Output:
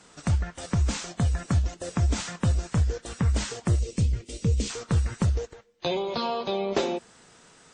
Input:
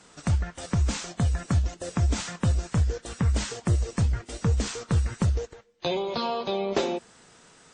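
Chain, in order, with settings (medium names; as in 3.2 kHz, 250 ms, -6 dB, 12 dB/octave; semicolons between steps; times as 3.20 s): 3.79–4.70 s: high-order bell 1.1 kHz -14 dB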